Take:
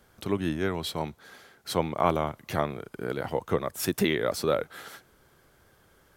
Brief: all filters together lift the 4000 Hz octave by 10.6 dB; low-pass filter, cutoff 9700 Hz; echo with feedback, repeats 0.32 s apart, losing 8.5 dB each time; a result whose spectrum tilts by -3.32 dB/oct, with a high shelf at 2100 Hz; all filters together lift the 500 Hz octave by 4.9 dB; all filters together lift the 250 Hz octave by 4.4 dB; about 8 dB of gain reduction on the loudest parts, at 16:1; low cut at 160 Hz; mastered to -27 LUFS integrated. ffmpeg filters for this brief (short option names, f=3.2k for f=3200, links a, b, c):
-af "highpass=160,lowpass=9.7k,equalizer=f=250:t=o:g=5.5,equalizer=f=500:t=o:g=4,highshelf=f=2.1k:g=8,equalizer=f=4k:t=o:g=5.5,acompressor=threshold=-22dB:ratio=16,aecho=1:1:320|640|960|1280:0.376|0.143|0.0543|0.0206,volume=1.5dB"